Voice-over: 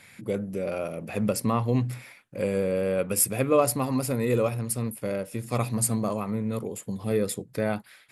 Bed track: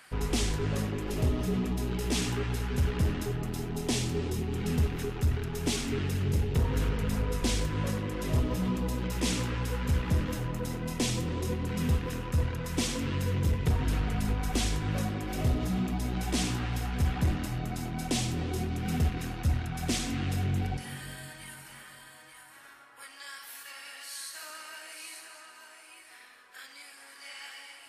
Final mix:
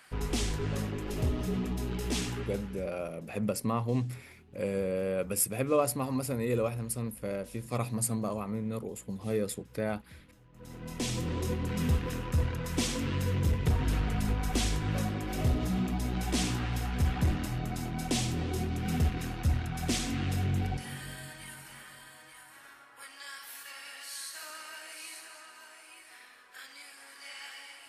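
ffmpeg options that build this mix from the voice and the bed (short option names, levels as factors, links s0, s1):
-filter_complex "[0:a]adelay=2200,volume=0.531[s0];[1:a]volume=15,afade=t=out:st=2.16:d=0.73:silence=0.0630957,afade=t=in:st=10.52:d=0.8:silence=0.0501187[s1];[s0][s1]amix=inputs=2:normalize=0"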